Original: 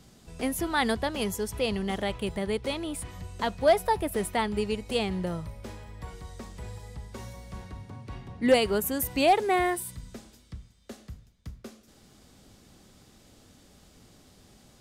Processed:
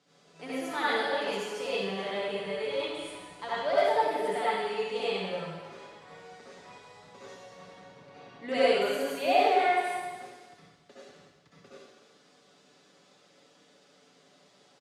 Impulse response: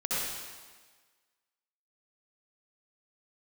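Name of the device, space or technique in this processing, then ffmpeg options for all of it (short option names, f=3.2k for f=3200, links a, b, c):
supermarket ceiling speaker: -filter_complex "[0:a]highpass=330,lowpass=5.4k[a];[1:a]atrim=start_sample=2205[b];[a][b]afir=irnorm=-1:irlink=0,asplit=3[c][d][e];[c]afade=t=out:st=2.44:d=0.02[f];[d]asubboost=boost=5:cutoff=110,afade=t=in:st=2.44:d=0.02,afade=t=out:st=4.04:d=0.02[g];[e]afade=t=in:st=4.04:d=0.02[h];[f][g][h]amix=inputs=3:normalize=0,equalizer=f=280:t=o:w=0.27:g=-3,aecho=1:1:6.9:0.47,volume=-9dB"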